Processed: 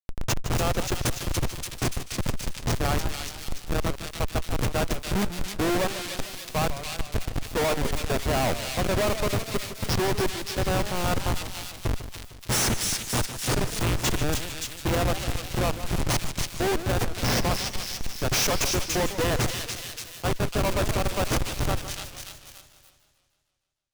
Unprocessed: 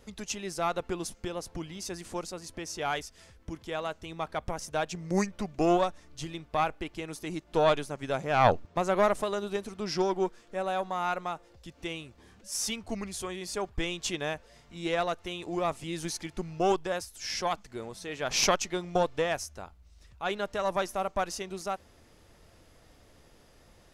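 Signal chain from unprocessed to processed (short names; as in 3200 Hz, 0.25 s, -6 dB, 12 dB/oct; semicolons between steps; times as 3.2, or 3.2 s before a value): high shelf 5500 Hz +12 dB; buzz 120 Hz, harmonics 14, -43 dBFS -8 dB/oct; 7.25–8.21 comb 4.3 ms, depth 39%; Schmitt trigger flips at -26.5 dBFS; thin delay 0.288 s, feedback 47%, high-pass 2700 Hz, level -7 dB; sample leveller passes 5; warbling echo 0.152 s, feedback 61%, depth 198 cents, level -12 dB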